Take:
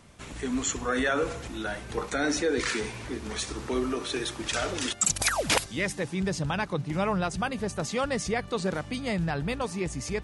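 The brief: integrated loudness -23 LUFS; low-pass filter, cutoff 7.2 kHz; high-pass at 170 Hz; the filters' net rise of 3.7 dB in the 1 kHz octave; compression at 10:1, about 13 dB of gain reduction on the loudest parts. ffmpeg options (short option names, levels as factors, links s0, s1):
-af "highpass=170,lowpass=7200,equalizer=f=1000:t=o:g=5,acompressor=threshold=0.0282:ratio=10,volume=4.22"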